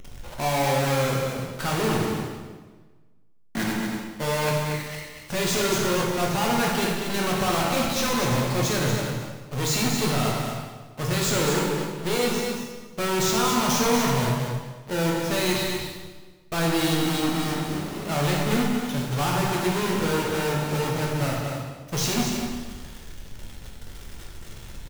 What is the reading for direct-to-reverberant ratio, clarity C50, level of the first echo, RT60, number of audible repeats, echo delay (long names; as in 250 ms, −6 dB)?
−3.5 dB, 0.0 dB, −6.0 dB, 1.4 s, 1, 234 ms